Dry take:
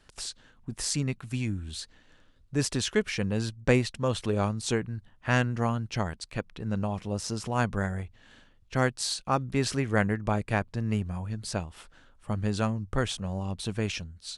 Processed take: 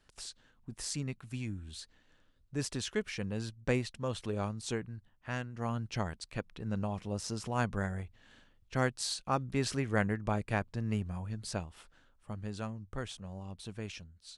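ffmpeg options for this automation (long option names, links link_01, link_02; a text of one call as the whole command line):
ffmpeg -i in.wav -af "volume=2dB,afade=type=out:start_time=4.82:duration=0.7:silence=0.446684,afade=type=in:start_time=5.52:duration=0.25:silence=0.316228,afade=type=out:start_time=11.5:duration=0.89:silence=0.473151" out.wav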